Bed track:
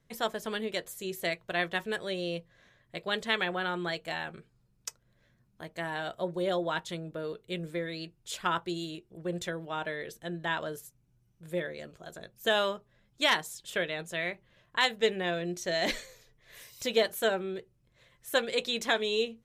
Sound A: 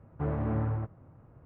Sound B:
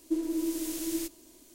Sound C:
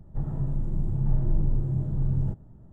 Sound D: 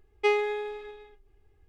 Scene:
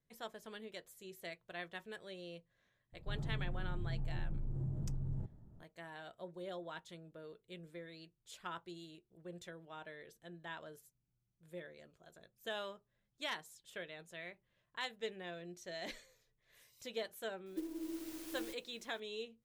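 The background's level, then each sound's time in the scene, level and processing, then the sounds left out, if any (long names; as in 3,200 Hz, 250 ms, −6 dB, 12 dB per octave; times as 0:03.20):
bed track −15.5 dB
0:02.92: mix in C −9 dB, fades 0.02 s + downward compressor, threshold −25 dBFS
0:17.46: mix in B −12.5 dB + converter with an unsteady clock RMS 0.044 ms
not used: A, D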